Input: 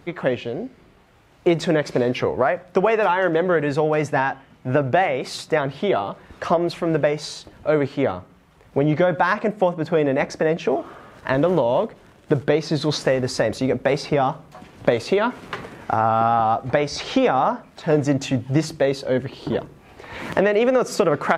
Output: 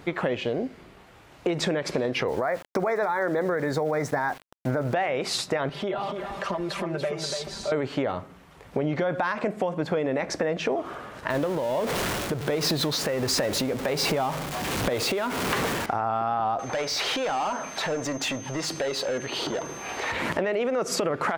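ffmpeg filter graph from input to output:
-filter_complex "[0:a]asettb=1/sr,asplit=3[a][b][c];[a]atrim=end=2.284[d];[b]atrim=start=2.28:end=4.94,asetpts=PTS-STARTPTS,afade=t=in:d=0.004:c=qsin,afade=t=out:st=2.656:d=0.004:c=qsin,asuperstop=centerf=2900:order=8:qfactor=2.3,aeval=exprs='val(0)*gte(abs(val(0)),0.0112)':c=same[e];[c]atrim=start=4.936[f];[d][e]acrossfade=d=0.004:c1=hsin:c2=qsin[g];[g][f]acrossfade=d=0.004:c1=qsin:c2=hsin,asettb=1/sr,asplit=3[h][i][j];[h]atrim=end=5.694[k];[i]atrim=start=5.69:end=7.72,asetpts=PTS-STARTPTS,afade=t=in:d=0.004:c=qsin,afade=t=out:st=2.026:d=0.004:c=qsin,aecho=1:1:5.1:0.97,atrim=end_sample=89523,acompressor=threshold=-36dB:ratio=2.5:attack=3.2:release=140:knee=1:detection=peak,aecho=1:1:288:0.473,atrim=end_sample=89523[l];[j]atrim=start=7.716[m];[k][l]acrossfade=d=0.004:c1=hsin:c2=qsin[n];[n][m]acrossfade=d=0.004:c1=qsin:c2=hsin,asettb=1/sr,asplit=3[o][p][q];[o]atrim=end=11.304[r];[p]atrim=start=11.3:end=15.86,asetpts=PTS-STARTPTS,afade=t=in:d=0.004:c=qsin,afade=t=out:st=4.556:d=0.004:c=qsin,aeval=exprs='val(0)+0.5*0.0562*sgn(val(0))':c=same,acompressor=threshold=-22dB:ratio=2.5:attack=3.2:release=140:knee=1:detection=peak,tremolo=f=1.4:d=0.49[s];[q]atrim=start=15.856[t];[r][s]acrossfade=d=0.004:c1=hsin:c2=qsin[u];[u][t]acrossfade=d=0.004:c1=qsin:c2=hsin,asettb=1/sr,asplit=3[v][w][x];[v]atrim=end=16.594[y];[w]atrim=start=16.59:end=20.12,asetpts=PTS-STARTPTS,afade=t=in:d=0.004:c=qsin,afade=t=out:st=3.526:d=0.004:c=qsin,acompressor=threshold=-37dB:ratio=3:attack=3.2:release=140:knee=1:detection=peak,aeval=exprs='val(0)+0.00158*sin(2*PI*6300*n/s)':c=same,asplit=2[z][aa];[aa]highpass=f=720:p=1,volume=19dB,asoftclip=type=tanh:threshold=-23dB[ab];[z][ab]amix=inputs=2:normalize=0,lowpass=f=5.3k:p=1,volume=-6dB[ac];[x]atrim=start=20.116[ad];[y][ac]acrossfade=d=0.004:c1=hsin:c2=qsin[ae];[ae][ad]acrossfade=d=0.004:c1=qsin:c2=hsin,alimiter=limit=-14.5dB:level=0:latency=1:release=64,lowshelf=f=250:g=-4.5,acompressor=threshold=-27dB:ratio=6,volume=4.5dB"

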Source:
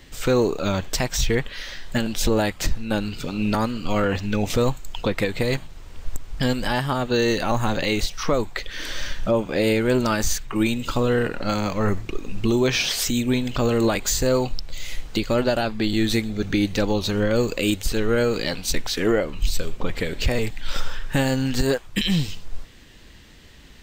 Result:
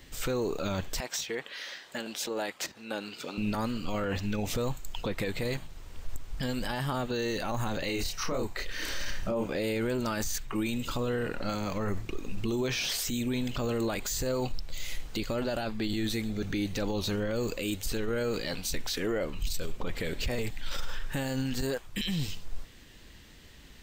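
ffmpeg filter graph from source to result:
-filter_complex "[0:a]asettb=1/sr,asplit=3[a][b][c];[a]atrim=end=1.004[d];[b]atrim=start=1:end=3.38,asetpts=PTS-STARTPTS,afade=t=in:d=0.004:c=qsin,afade=t=out:st=2.376:d=0.004:c=qsin,highshelf=f=9.3k:g=-8,acompressor=threshold=-20dB:ratio=6:attack=3.2:release=140:knee=1:detection=peak,highpass=360[e];[c]atrim=start=3.376[f];[d][e]acrossfade=d=0.004:c1=hsin:c2=qsin[g];[g][f]acrossfade=d=0.004:c1=qsin:c2=hsin,asettb=1/sr,asplit=3[h][i][j];[h]atrim=end=7.864[k];[i]atrim=start=7.86:end=9.49,asetpts=PTS-STARTPTS,afade=t=in:d=0.004:c=qsin,afade=t=out:st=1.626:d=0.004:c=qsin,bandreject=f=3.4k:w=9.3,asplit=2[l][m];[m]adelay=31,volume=-3dB[n];[l][n]amix=inputs=2:normalize=0,atrim=end_sample=71883[o];[j]atrim=start=9.486[p];[k][o]acrossfade=d=0.004:c1=hsin:c2=qsin[q];[q][p]acrossfade=d=0.004:c1=qsin:c2=hsin,highshelf=f=10k:g=6,alimiter=limit=-18dB:level=0:latency=1:release=11,volume=-5dB"

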